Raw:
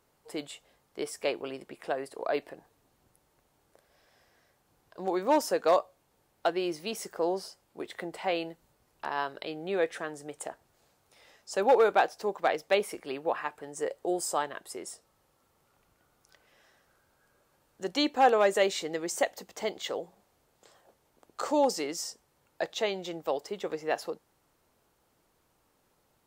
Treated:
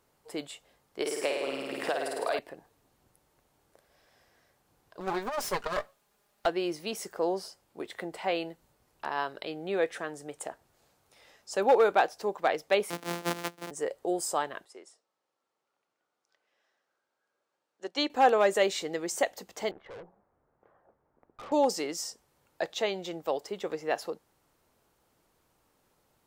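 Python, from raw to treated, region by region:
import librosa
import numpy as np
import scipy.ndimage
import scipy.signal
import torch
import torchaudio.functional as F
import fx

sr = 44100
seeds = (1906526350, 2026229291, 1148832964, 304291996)

y = fx.chain(x, sr, fx.highpass(hz=430.0, slope=6),
    fx.room_flutter(wall_m=8.9, rt60_s=1.0),
    fx.band_squash(depth_pct=100), at=(1.0, 2.39))
y = fx.chain(y, sr, fx.lower_of_two(delay_ms=4.9),
    fx.low_shelf(hz=410.0, db=-7.0),
    fx.over_compress(threshold_db=-29.0, ratio=-0.5), at=(5.0, 6.46))
y = fx.chain(y, sr, fx.sample_sort(block=256),
    fx.highpass(hz=200.0, slope=24),
    fx.band_squash(depth_pct=70), at=(12.9, 13.71))
y = fx.chain(y, sr, fx.block_float(bits=7),
    fx.bandpass_edges(low_hz=320.0, high_hz=6800.0),
    fx.upward_expand(threshold_db=-50.0, expansion=1.5), at=(14.65, 18.1))
y = fx.chain(y, sr, fx.lowpass(hz=1600.0, slope=24),
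    fx.tube_stage(drive_db=42.0, bias=0.55), at=(19.71, 21.52))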